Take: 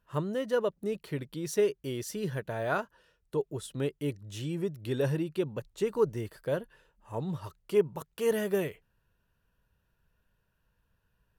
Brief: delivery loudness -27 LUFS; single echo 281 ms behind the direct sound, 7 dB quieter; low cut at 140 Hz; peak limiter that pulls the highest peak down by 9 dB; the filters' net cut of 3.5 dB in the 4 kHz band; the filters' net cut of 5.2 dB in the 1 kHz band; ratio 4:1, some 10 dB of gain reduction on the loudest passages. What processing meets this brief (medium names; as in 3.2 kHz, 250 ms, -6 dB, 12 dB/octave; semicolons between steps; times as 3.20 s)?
high-pass 140 Hz; peaking EQ 1 kHz -7 dB; peaking EQ 4 kHz -4.5 dB; compression 4:1, threshold -33 dBFS; peak limiter -31.5 dBFS; delay 281 ms -7 dB; trim +14.5 dB